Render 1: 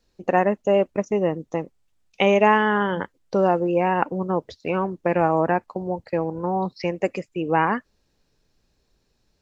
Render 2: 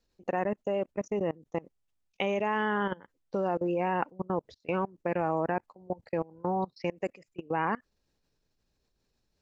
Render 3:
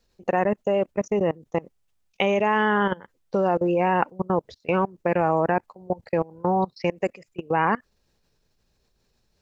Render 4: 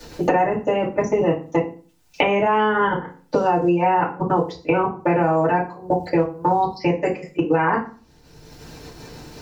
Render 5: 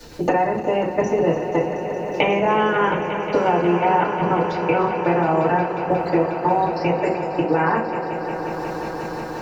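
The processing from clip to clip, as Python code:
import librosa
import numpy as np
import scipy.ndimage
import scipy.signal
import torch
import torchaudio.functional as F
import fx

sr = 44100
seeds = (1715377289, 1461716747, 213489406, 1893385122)

y1 = fx.level_steps(x, sr, step_db=24)
y1 = F.gain(torch.from_numpy(y1), -4.5).numpy()
y2 = fx.peak_eq(y1, sr, hz=290.0, db=-7.0, octaves=0.23)
y2 = F.gain(torch.from_numpy(y2), 8.0).numpy()
y3 = fx.rev_fdn(y2, sr, rt60_s=0.32, lf_ratio=1.25, hf_ratio=0.8, size_ms=20.0, drr_db=-9.0)
y3 = fx.band_squash(y3, sr, depth_pct=100)
y3 = F.gain(torch.from_numpy(y3), -6.5).numpy()
y4 = fx.reverse_delay_fb(y3, sr, ms=151, feedback_pct=66, wet_db=-12.0)
y4 = fx.echo_swell(y4, sr, ms=180, loudest=5, wet_db=-14)
y4 = F.gain(torch.from_numpy(y4), -1.0).numpy()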